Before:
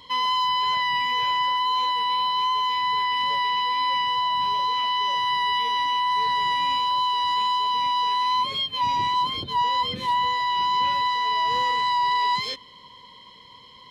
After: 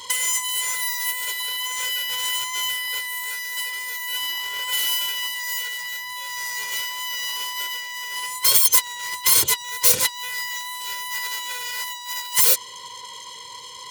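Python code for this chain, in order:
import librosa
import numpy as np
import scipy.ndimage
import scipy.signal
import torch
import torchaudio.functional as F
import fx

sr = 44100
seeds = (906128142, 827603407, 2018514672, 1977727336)

y = fx.self_delay(x, sr, depth_ms=0.78)
y = fx.highpass(y, sr, hz=220.0, slope=6)
y = y + 0.68 * np.pad(y, (int(2.1 * sr / 1000.0), 0))[:len(y)]
y = fx.over_compress(y, sr, threshold_db=-26.0, ratio=-0.5)
y = fx.high_shelf(y, sr, hz=3400.0, db=11.0)
y = F.gain(torch.from_numpy(y), -3.0).numpy()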